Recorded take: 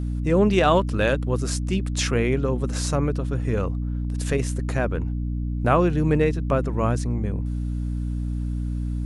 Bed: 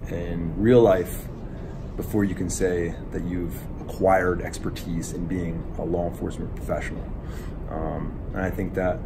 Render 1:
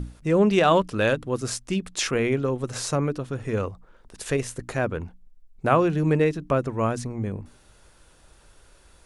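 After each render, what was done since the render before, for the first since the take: notches 60/120/180/240/300 Hz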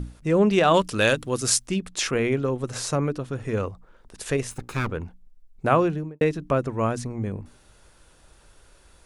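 0.74–1.67 high shelf 2800 Hz +12 dB; 4.51–4.91 minimum comb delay 0.78 ms; 5.79–6.21 studio fade out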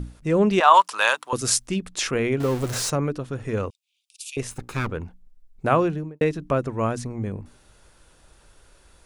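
0.6–1.33 resonant high-pass 950 Hz, resonance Q 3.9; 2.4–2.9 zero-crossing step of -27 dBFS; 3.7–4.37 steep high-pass 2400 Hz 96 dB/oct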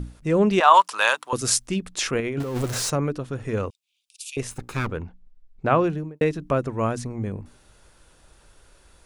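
2.2–2.64 negative-ratio compressor -27 dBFS; 5.01–5.84 LPF 4500 Hz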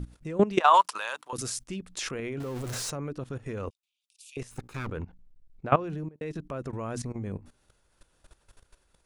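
level quantiser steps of 17 dB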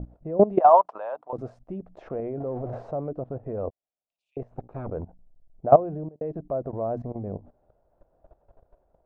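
hard clip -10.5 dBFS, distortion -25 dB; synth low-pass 670 Hz, resonance Q 4.9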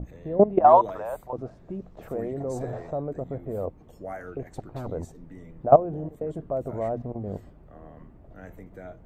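add bed -18 dB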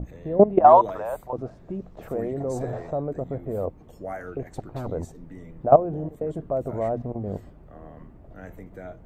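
gain +2.5 dB; limiter -3 dBFS, peak gain reduction 3 dB

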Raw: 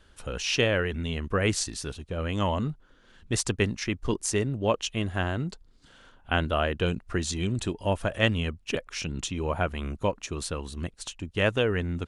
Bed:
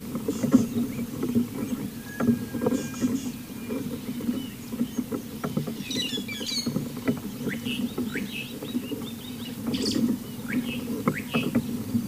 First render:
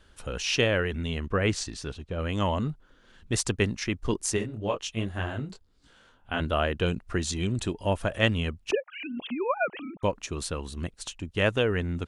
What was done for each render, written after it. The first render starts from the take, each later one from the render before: 1.26–2.19 air absorption 64 m; 4.36–6.39 detuned doubles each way 49 cents -> 31 cents; 8.71–10.03 sine-wave speech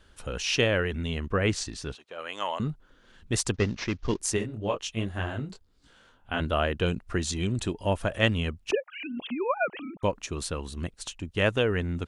1.95–2.6 HPF 680 Hz; 3.54–4.19 CVSD 32 kbps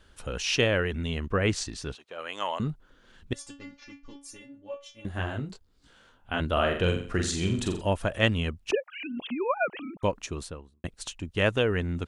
3.33–5.05 metallic resonator 280 Hz, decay 0.31 s, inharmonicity 0.002; 6.52–7.82 flutter echo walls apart 7.5 m, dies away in 0.49 s; 10.2–10.84 studio fade out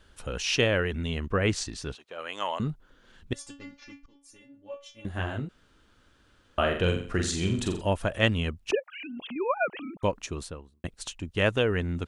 4.06–4.93 fade in, from -18 dB; 5.49–6.58 room tone; 8.79–9.36 compressor 2.5:1, threshold -37 dBFS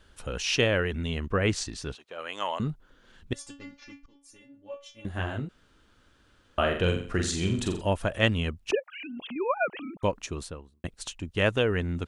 nothing audible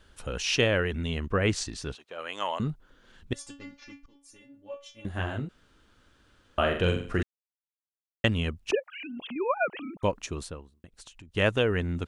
7.23–8.24 mute; 10.7–11.34 compressor 10:1, threshold -45 dBFS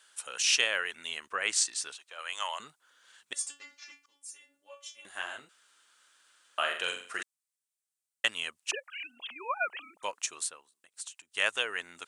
HPF 1100 Hz 12 dB/oct; bell 8500 Hz +13 dB 0.9 oct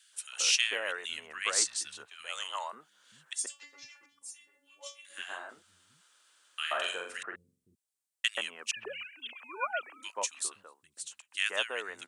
three bands offset in time highs, mids, lows 0.13/0.52 s, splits 180/1700 Hz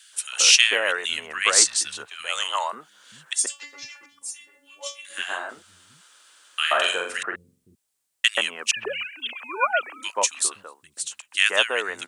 gain +11.5 dB; limiter -1 dBFS, peak gain reduction 2 dB

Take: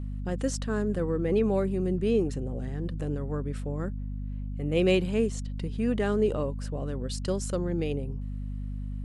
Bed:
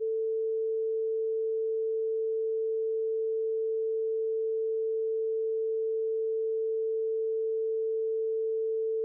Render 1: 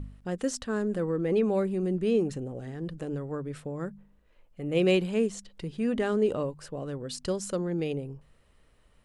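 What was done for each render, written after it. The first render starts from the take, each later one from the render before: de-hum 50 Hz, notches 5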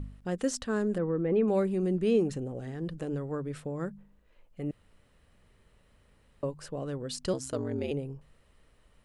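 0.98–1.48 air absorption 430 m; 4.71–6.43 room tone; 7.33–7.91 ring modulator 64 Hz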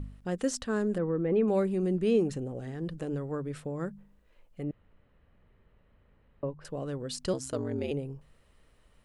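4.63–6.65 air absorption 430 m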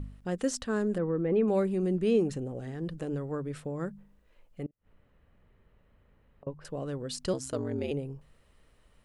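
4.66–6.47 flipped gate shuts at -40 dBFS, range -29 dB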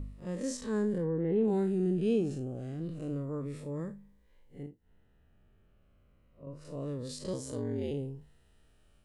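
time blur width 0.101 s; cascading phaser falling 0.3 Hz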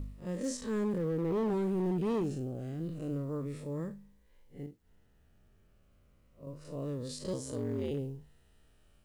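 companded quantiser 8-bit; hard clip -27.5 dBFS, distortion -13 dB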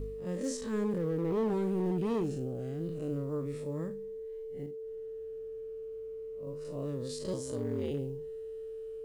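add bed -12 dB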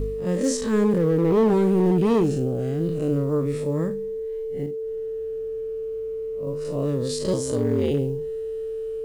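gain +12 dB

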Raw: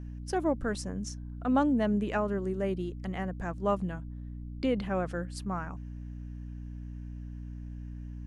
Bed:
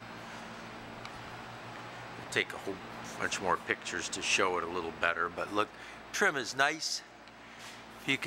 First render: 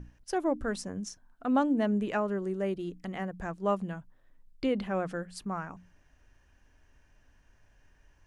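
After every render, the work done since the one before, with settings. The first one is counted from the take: notches 60/120/180/240/300 Hz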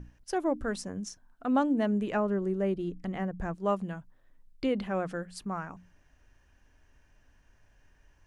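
2.11–3.55 tilt -1.5 dB/oct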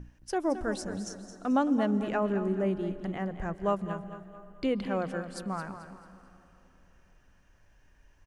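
on a send: feedback echo 0.219 s, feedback 37%, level -11 dB; on the sum: plate-style reverb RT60 3.7 s, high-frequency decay 0.7×, pre-delay 0.115 s, DRR 16 dB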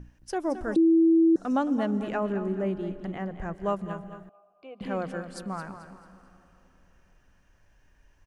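0.76–1.36 bleep 328 Hz -16 dBFS; 2.32–3.52 high shelf 7500 Hz -6 dB; 4.29–4.81 vowel filter a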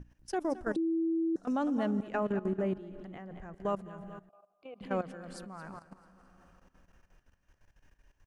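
level quantiser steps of 15 dB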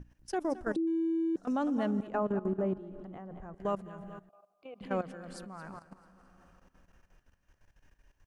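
0.87–1.37 median filter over 25 samples; 2.07–3.59 resonant high shelf 1500 Hz -6.5 dB, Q 1.5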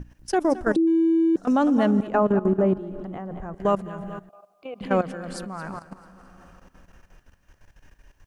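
gain +11 dB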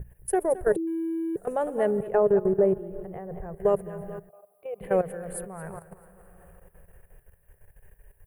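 EQ curve 160 Hz 0 dB, 270 Hz -23 dB, 410 Hz +5 dB, 1300 Hz -12 dB, 1800 Hz -3 dB, 5500 Hz -27 dB, 10000 Hz +12 dB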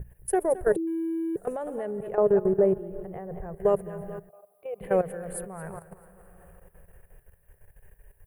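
1.52–2.18 compressor, threshold -29 dBFS

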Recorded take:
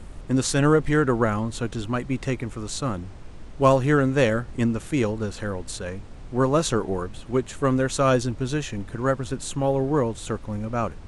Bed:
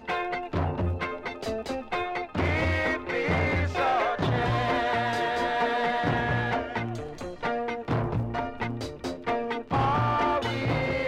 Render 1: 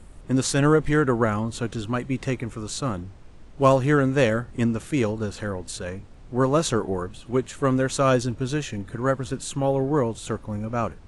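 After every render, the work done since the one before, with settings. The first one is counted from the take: noise print and reduce 6 dB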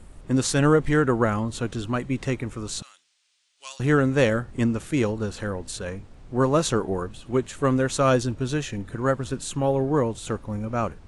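2.82–3.8 Butterworth band-pass 5800 Hz, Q 0.85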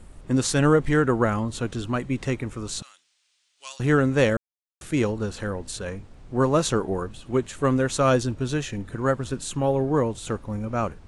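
4.37–4.81 mute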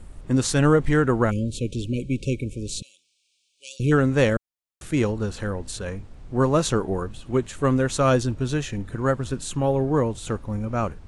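1.31–3.92 spectral delete 590–2200 Hz; low shelf 120 Hz +5 dB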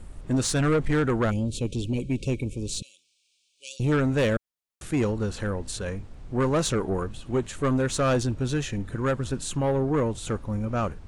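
soft clip -17.5 dBFS, distortion -12 dB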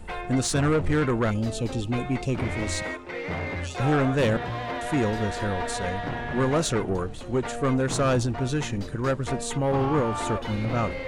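add bed -5.5 dB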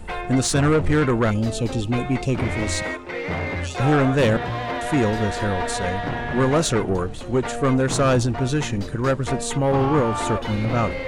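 gain +4.5 dB

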